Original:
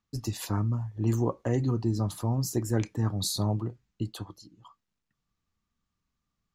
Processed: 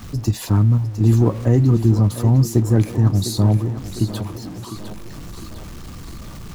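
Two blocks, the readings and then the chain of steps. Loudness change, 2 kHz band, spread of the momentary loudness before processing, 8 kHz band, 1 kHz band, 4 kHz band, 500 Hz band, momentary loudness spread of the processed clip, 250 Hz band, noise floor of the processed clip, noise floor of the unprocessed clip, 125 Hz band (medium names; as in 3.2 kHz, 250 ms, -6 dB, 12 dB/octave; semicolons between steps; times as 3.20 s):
+12.0 dB, no reading, 10 LU, +5.0 dB, +6.5 dB, +5.0 dB, +9.0 dB, 21 LU, +11.5 dB, -34 dBFS, -84 dBFS, +13.5 dB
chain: jump at every zero crossing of -39 dBFS; bass shelf 370 Hz +10 dB; in parallel at -2.5 dB: level held to a coarse grid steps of 20 dB; on the sum: thinning echo 705 ms, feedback 62%, high-pass 180 Hz, level -10 dB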